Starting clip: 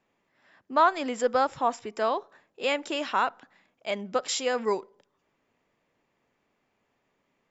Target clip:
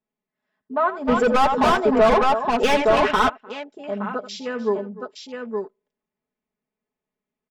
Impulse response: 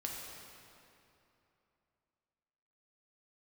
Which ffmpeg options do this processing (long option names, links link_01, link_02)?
-filter_complex "[0:a]afwtdn=0.0224,aecho=1:1:83|301|868:0.188|0.119|0.562,asplit=3[link_01][link_02][link_03];[link_01]afade=type=out:start_time=1.07:duration=0.02[link_04];[link_02]asplit=2[link_05][link_06];[link_06]highpass=frequency=720:poles=1,volume=28dB,asoftclip=type=tanh:threshold=-9.5dB[link_07];[link_05][link_07]amix=inputs=2:normalize=0,lowpass=frequency=3600:poles=1,volume=-6dB,afade=type=in:start_time=1.07:duration=0.02,afade=type=out:start_time=3.28:duration=0.02[link_08];[link_03]afade=type=in:start_time=3.28:duration=0.02[link_09];[link_04][link_08][link_09]amix=inputs=3:normalize=0,lowshelf=frequency=480:gain=8,aecho=1:1:4.7:0.8,volume=-4dB"